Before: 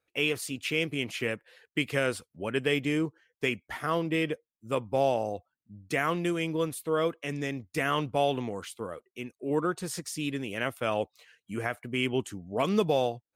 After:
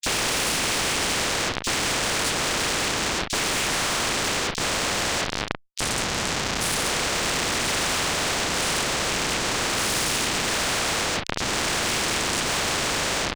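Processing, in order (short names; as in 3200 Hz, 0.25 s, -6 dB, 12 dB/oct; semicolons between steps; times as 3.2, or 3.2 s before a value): spectral dilation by 0.24 s; 3.52–4.04 pre-emphasis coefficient 0.97; 5.21–6.75 Chebyshev band-stop 150–7800 Hz, order 4; compressor 2.5:1, threshold -25 dBFS, peak gain reduction 7 dB; sine folder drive 13 dB, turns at -12 dBFS; whisperiser; Schmitt trigger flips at -24 dBFS; air absorption 140 m; doubler 38 ms -12 dB; bands offset in time highs, lows 30 ms, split 3900 Hz; spectral compressor 4:1; gain +4.5 dB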